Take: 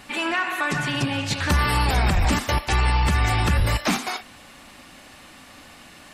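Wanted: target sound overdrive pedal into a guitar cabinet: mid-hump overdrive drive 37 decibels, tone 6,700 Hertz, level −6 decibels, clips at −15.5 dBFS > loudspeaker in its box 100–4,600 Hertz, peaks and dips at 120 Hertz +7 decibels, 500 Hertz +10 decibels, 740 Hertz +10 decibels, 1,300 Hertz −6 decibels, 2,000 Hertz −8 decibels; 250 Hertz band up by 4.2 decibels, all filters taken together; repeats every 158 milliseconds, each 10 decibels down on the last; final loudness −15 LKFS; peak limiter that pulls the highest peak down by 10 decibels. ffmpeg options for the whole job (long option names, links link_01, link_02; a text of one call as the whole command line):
ffmpeg -i in.wav -filter_complex "[0:a]equalizer=frequency=250:width_type=o:gain=4.5,alimiter=limit=-18.5dB:level=0:latency=1,aecho=1:1:158|316|474|632:0.316|0.101|0.0324|0.0104,asplit=2[link_01][link_02];[link_02]highpass=frequency=720:poles=1,volume=37dB,asoftclip=type=tanh:threshold=-15.5dB[link_03];[link_01][link_03]amix=inputs=2:normalize=0,lowpass=frequency=6700:poles=1,volume=-6dB,highpass=100,equalizer=frequency=120:width_type=q:width=4:gain=7,equalizer=frequency=500:width_type=q:width=4:gain=10,equalizer=frequency=740:width_type=q:width=4:gain=10,equalizer=frequency=1300:width_type=q:width=4:gain=-6,equalizer=frequency=2000:width_type=q:width=4:gain=-8,lowpass=frequency=4600:width=0.5412,lowpass=frequency=4600:width=1.3066,volume=5dB" out.wav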